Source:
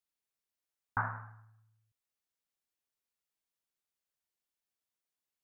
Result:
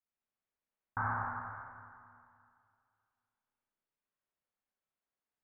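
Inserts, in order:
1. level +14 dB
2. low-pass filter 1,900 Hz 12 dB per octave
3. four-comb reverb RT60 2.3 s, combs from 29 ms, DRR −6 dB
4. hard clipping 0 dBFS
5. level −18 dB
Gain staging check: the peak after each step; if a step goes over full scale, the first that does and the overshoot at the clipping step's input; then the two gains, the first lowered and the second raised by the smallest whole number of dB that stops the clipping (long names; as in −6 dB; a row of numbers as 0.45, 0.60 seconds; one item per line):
−5.0, −5.5, −5.5, −5.5, −23.5 dBFS
no step passes full scale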